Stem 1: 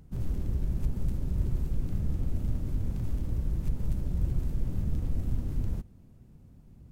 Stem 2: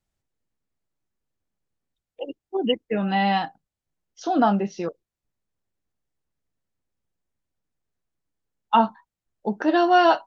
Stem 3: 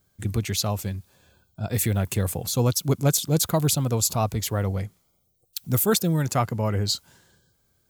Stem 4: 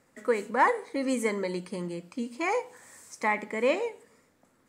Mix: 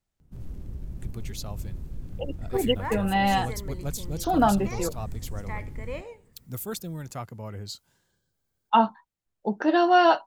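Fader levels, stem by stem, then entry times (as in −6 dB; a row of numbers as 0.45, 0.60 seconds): −7.0, −1.5, −13.0, −11.5 decibels; 0.20, 0.00, 0.80, 2.25 seconds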